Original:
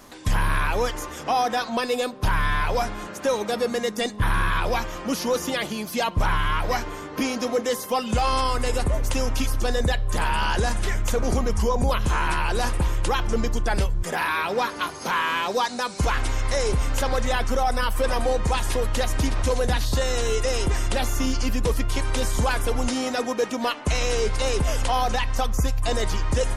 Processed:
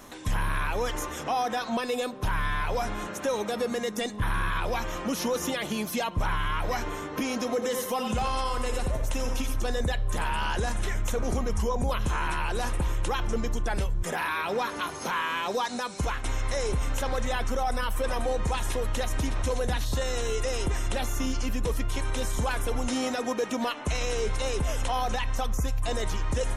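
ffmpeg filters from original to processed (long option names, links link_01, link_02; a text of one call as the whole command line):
ffmpeg -i in.wav -filter_complex "[0:a]asettb=1/sr,asplit=3[link_01][link_02][link_03];[link_01]atrim=end=7.534[link_04];[link_02]atrim=start=7.53:end=9.54,asetpts=PTS-STARTPTS,afade=type=in:duration=0.004:curve=qsin,afade=type=out:start_time=2.006:duration=0.004:curve=qsin,aecho=1:1:86|172|258|344:0.376|0.132|0.046|0.0161,atrim=end_sample=88641[link_05];[link_03]atrim=start=9.536[link_06];[link_04][link_05]acrossfade=duration=0.004:curve1=hsin:curve2=qsin[link_07];[link_07][link_06]acrossfade=duration=0.004:curve1=qsin:curve2=hsin,asplit=2[link_08][link_09];[link_08]atrim=end=16.24,asetpts=PTS-STARTPTS,afade=type=out:start_time=15.77:duration=0.47:silence=0.251189[link_10];[link_09]atrim=start=16.24,asetpts=PTS-STARTPTS,afade=type=in:duration=0.004:curve=hsin:silence=0.251189[link_11];[link_10][link_11]concat=n=2:v=0:a=1,alimiter=limit=-20dB:level=0:latency=1:release=96,bandreject=frequency=4700:width=7.5" out.wav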